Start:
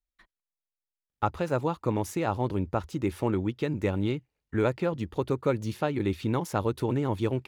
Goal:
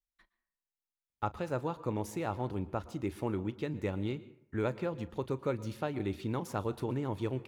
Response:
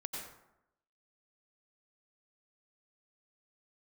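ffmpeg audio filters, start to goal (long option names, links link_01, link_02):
-filter_complex "[0:a]asplit=2[link_01][link_02];[1:a]atrim=start_sample=2205,asetrate=52920,aresample=44100,adelay=38[link_03];[link_02][link_03]afir=irnorm=-1:irlink=0,volume=-13.5dB[link_04];[link_01][link_04]amix=inputs=2:normalize=0,volume=-7dB"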